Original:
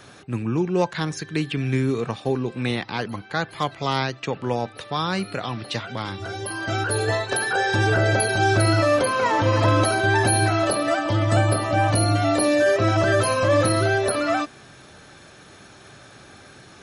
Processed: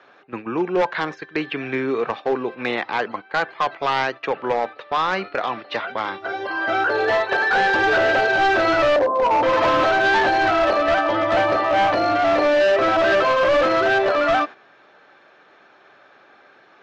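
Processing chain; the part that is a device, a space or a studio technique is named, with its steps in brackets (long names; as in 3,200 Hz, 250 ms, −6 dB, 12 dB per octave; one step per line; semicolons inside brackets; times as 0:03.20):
0:08.96–0:09.43: Butterworth low-pass 990 Hz 48 dB per octave
walkie-talkie (band-pass filter 470–2,200 Hz; hard clipping −22 dBFS, distortion −11 dB; noise gate −38 dBFS, range −9 dB)
low-pass filter 6,400 Hz 24 dB per octave
level +8 dB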